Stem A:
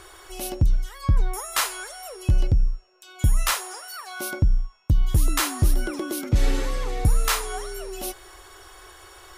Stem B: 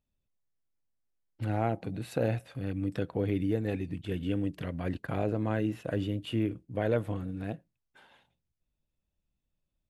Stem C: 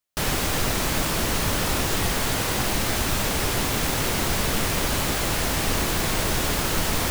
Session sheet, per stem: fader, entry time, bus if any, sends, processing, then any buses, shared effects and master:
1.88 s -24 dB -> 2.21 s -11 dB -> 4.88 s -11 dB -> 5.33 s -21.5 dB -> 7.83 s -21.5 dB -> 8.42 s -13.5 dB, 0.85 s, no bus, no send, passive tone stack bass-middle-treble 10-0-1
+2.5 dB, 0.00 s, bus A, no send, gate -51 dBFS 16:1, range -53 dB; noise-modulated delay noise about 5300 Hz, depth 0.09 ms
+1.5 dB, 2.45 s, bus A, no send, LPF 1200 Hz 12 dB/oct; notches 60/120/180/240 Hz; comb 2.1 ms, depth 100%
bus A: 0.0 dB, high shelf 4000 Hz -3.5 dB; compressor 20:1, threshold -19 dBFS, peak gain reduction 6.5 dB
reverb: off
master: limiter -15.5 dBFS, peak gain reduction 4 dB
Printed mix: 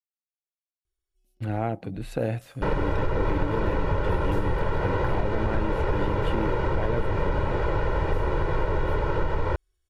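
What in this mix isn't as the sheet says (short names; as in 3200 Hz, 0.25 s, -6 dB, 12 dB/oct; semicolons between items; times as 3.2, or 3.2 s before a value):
stem B: missing noise-modulated delay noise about 5300 Hz, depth 0.09 ms; master: missing limiter -15.5 dBFS, peak gain reduction 4 dB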